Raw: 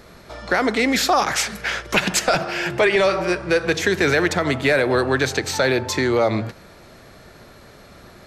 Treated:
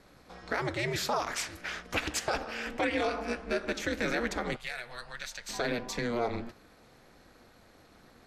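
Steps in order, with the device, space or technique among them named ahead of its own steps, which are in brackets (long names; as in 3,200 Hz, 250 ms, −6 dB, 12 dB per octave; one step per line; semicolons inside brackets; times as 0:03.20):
alien voice (ring modulation 120 Hz; flanger 1.7 Hz, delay 4.5 ms, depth 6.1 ms, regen −86%)
0:04.56–0:05.49: guitar amp tone stack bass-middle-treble 10-0-10
level −5.5 dB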